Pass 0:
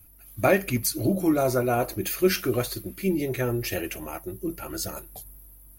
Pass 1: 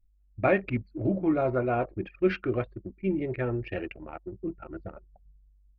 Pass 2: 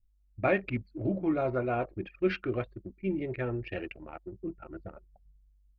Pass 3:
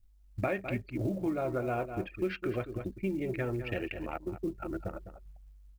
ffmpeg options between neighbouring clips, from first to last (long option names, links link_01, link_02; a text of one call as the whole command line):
ffmpeg -i in.wav -af "lowpass=frequency=2900:width=0.5412,lowpass=frequency=2900:width=1.3066,anlmdn=10,volume=-3dB" out.wav
ffmpeg -i in.wav -af "adynamicequalizer=threshold=0.00316:dfrequency=4100:dqfactor=0.81:tfrequency=4100:tqfactor=0.81:attack=5:release=100:ratio=0.375:range=2.5:mode=boostabove:tftype=bell,volume=-3.5dB" out.wav
ffmpeg -i in.wav -filter_complex "[0:a]asplit=2[link_01][link_02];[link_02]adelay=204.1,volume=-13dB,highshelf=frequency=4000:gain=-4.59[link_03];[link_01][link_03]amix=inputs=2:normalize=0,acompressor=threshold=-38dB:ratio=4,acrusher=bits=8:mode=log:mix=0:aa=0.000001,volume=7dB" out.wav